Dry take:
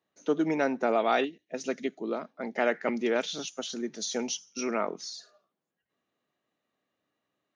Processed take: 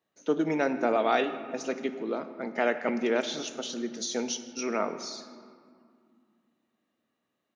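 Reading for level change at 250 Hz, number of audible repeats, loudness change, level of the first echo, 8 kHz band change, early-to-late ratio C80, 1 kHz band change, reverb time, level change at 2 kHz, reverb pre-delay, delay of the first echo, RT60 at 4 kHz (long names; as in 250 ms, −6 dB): +0.5 dB, 1, +0.5 dB, −22.5 dB, 0.0 dB, 12.0 dB, +0.5 dB, 2.3 s, +0.5 dB, 3 ms, 158 ms, 1.2 s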